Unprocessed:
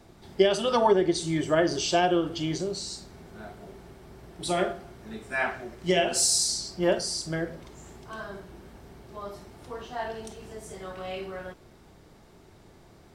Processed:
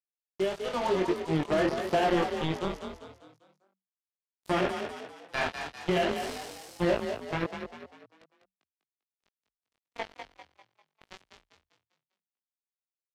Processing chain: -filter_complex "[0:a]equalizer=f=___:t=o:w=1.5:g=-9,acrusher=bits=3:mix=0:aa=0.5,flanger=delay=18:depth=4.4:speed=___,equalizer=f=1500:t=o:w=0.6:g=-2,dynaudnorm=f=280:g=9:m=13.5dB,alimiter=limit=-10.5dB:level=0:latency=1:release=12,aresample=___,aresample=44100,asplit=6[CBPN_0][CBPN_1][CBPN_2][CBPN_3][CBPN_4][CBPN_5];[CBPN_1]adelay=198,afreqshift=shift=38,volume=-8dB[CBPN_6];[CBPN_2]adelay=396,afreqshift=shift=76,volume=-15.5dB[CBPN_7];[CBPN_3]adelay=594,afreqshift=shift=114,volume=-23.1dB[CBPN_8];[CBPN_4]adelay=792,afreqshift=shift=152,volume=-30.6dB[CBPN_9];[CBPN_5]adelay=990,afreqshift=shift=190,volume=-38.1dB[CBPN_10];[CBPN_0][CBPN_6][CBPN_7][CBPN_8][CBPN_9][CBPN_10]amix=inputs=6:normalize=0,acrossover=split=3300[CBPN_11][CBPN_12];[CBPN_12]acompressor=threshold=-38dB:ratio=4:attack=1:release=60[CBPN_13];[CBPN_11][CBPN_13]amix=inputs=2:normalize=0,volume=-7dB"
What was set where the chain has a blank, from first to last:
7800, 1.6, 32000